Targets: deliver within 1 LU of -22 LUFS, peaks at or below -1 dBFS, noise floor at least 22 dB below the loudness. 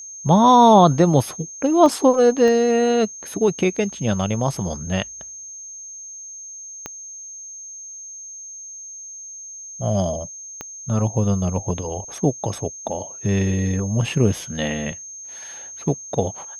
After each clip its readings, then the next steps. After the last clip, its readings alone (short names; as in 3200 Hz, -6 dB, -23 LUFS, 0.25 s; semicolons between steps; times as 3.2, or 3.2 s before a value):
clicks 4; steady tone 6400 Hz; tone level -34 dBFS; loudness -19.5 LUFS; peak -2.0 dBFS; loudness target -22.0 LUFS
-> de-click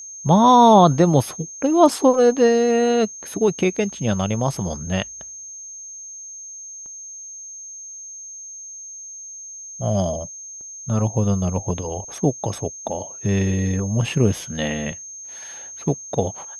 clicks 0; steady tone 6400 Hz; tone level -34 dBFS
-> notch 6400 Hz, Q 30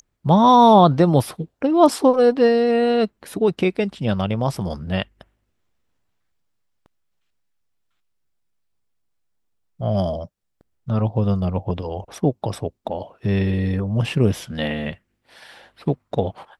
steady tone none; loudness -19.5 LUFS; peak -2.5 dBFS; loudness target -22.0 LUFS
-> gain -2.5 dB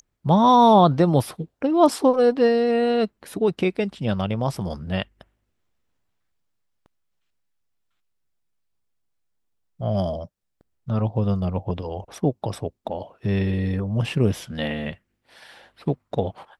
loudness -22.0 LUFS; peak -5.0 dBFS; noise floor -75 dBFS